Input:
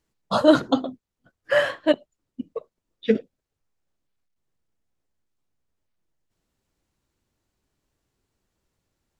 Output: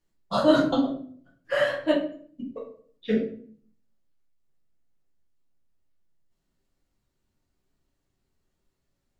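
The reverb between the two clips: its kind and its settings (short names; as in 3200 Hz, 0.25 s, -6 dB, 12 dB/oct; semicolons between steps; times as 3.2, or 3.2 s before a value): shoebox room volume 56 m³, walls mixed, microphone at 1 m; gain -8 dB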